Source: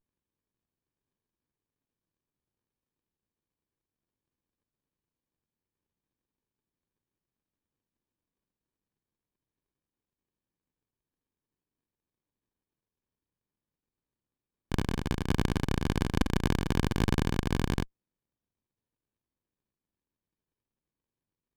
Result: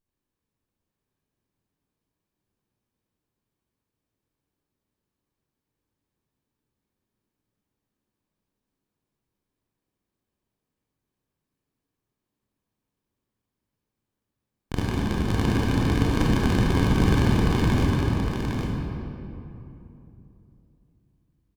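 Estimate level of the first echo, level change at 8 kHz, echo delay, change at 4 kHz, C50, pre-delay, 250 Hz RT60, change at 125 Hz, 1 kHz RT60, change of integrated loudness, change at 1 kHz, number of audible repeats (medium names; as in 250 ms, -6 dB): -5.0 dB, +4.5 dB, 809 ms, +5.5 dB, -4.0 dB, 22 ms, 3.5 s, +8.5 dB, 2.8 s, +7.0 dB, +7.5 dB, 1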